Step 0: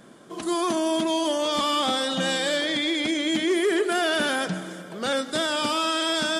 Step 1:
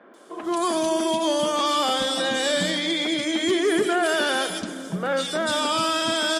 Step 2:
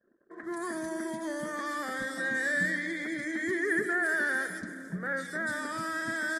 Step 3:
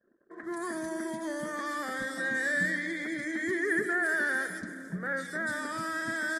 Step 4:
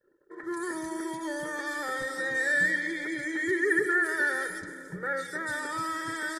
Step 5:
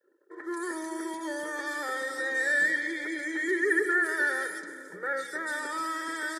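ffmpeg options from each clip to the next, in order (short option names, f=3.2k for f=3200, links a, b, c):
-filter_complex "[0:a]acontrast=62,acrossover=split=270|2400[a][b][c];[c]adelay=140[d];[a]adelay=430[e];[e][b][d]amix=inputs=3:normalize=0,volume=-3.5dB"
-af "anlmdn=0.1,firequalizer=gain_entry='entry(140,0);entry(810,-12);entry(1300,-4);entry(1800,12);entry(2700,-25);entry(4100,-12);entry(13000,-1)':delay=0.05:min_phase=1,volume=-6.5dB"
-af anull
-af "aecho=1:1:2.2:0.82"
-af "highpass=f=270:w=0.5412,highpass=f=270:w=1.3066"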